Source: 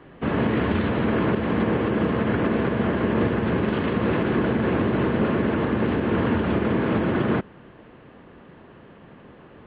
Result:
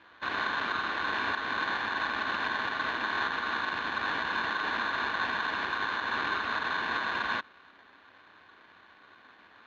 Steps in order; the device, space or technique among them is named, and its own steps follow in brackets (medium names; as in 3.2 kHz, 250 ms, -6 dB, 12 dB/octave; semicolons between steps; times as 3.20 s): ring modulator pedal into a guitar cabinet (polarity switched at an audio rate 1.3 kHz; cabinet simulation 77–3600 Hz, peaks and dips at 140 Hz -10 dB, 290 Hz +5 dB, 860 Hz -4 dB); trim -8 dB